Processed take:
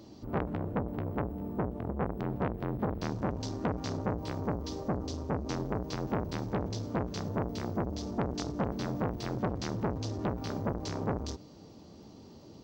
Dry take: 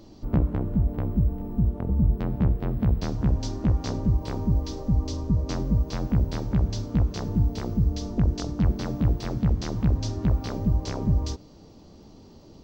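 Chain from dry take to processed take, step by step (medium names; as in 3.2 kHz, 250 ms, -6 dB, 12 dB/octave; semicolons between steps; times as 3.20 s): high-pass 84 Hz 12 dB/octave; transformer saturation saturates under 1.2 kHz; trim -1.5 dB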